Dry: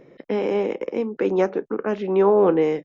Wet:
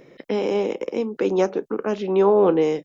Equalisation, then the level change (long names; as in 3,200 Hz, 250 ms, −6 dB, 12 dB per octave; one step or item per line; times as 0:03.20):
high-shelf EQ 2,400 Hz +10.5 dB
dynamic equaliser 1,900 Hz, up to −7 dB, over −42 dBFS, Q 1.4
0.0 dB